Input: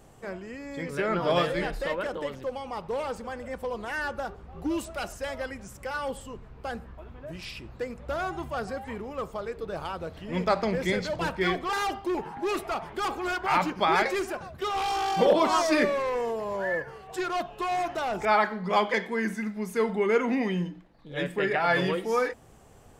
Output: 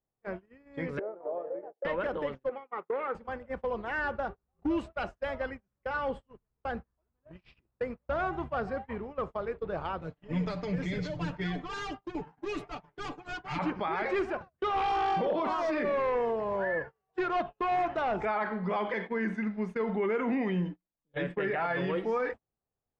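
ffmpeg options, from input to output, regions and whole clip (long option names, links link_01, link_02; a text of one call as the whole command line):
ffmpeg -i in.wav -filter_complex "[0:a]asettb=1/sr,asplit=3[link_01][link_02][link_03];[link_01]atrim=end=0.994[link_04];[link_02]atrim=start=0.99:end=1.85,asetpts=PTS-STARTPTS,afade=type=in:duration=0.004:curve=qsin,afade=type=out:start_time=0.856:duration=0.004:curve=qsin,acompressor=threshold=-29dB:ratio=8:attack=3.2:release=140:knee=1:detection=peak,asuperpass=centerf=550:order=4:qfactor=1.3[link_05];[link_03]atrim=start=1.846[link_06];[link_04][link_05]acrossfade=duration=0.004:curve1=hsin:curve2=qsin[link_07];[link_07][link_06]acrossfade=duration=0.004:curve1=qsin:curve2=hsin,asettb=1/sr,asplit=3[link_08][link_09][link_10];[link_08]atrim=end=2.494[link_11];[link_09]atrim=start=2.49:end=3.15,asetpts=PTS-STARTPTS,afade=type=in:duration=0.004:curve=qsin,afade=type=out:start_time=0.656:duration=0.004:curve=qsin,highpass=350,equalizer=frequency=390:width_type=q:width=4:gain=5,equalizer=frequency=600:width_type=q:width=4:gain=-4,equalizer=frequency=900:width_type=q:width=4:gain=-6,equalizer=frequency=1300:width_type=q:width=4:gain=6,equalizer=frequency=2000:width_type=q:width=4:gain=6,equalizer=frequency=2900:width_type=q:width=4:gain=-8,lowpass=frequency=3100:width=0.5412,lowpass=frequency=3100:width=1.3066,bandreject=frequency=650:width=11[link_12];[link_10]atrim=start=3.146[link_13];[link_11][link_12]acrossfade=duration=0.004:curve1=hsin:curve2=qsin[link_14];[link_14][link_13]acrossfade=duration=0.004:curve1=qsin:curve2=hsin,asettb=1/sr,asplit=3[link_15][link_16][link_17];[link_15]atrim=end=10.014[link_18];[link_16]atrim=start=10.01:end=13.59,asetpts=PTS-STARTPTS,afade=type=in:duration=0.004:curve=qsin,afade=type=out:start_time=3.576:duration=0.004:curve=qsin,aecho=1:1:6.8:0.89,atrim=end_sample=157878,acrossover=split=270|3000[link_19][link_20][link_21];[link_20]acompressor=threshold=-38dB:ratio=5:attack=3.2:release=140:knee=2.83:detection=peak[link_22];[link_19][link_22][link_21]amix=inputs=3:normalize=0,equalizer=frequency=6700:width=2.3:gain=7.5[link_23];[link_17]atrim=start=13.586[link_24];[link_18][link_23]acrossfade=duration=0.004:curve1=hsin:curve2=qsin[link_25];[link_25][link_24]acrossfade=duration=0.004:curve1=qsin:curve2=hsin,alimiter=limit=-22.5dB:level=0:latency=1:release=31,agate=range=-37dB:threshold=-36dB:ratio=16:detection=peak,lowpass=2400" out.wav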